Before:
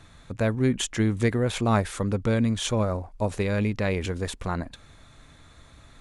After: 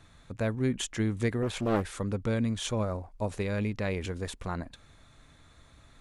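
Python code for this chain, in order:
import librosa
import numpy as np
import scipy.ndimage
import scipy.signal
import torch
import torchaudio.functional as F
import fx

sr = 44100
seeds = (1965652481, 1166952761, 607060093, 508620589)

y = fx.doppler_dist(x, sr, depth_ms=0.71, at=(1.42, 1.97))
y = y * librosa.db_to_amplitude(-5.5)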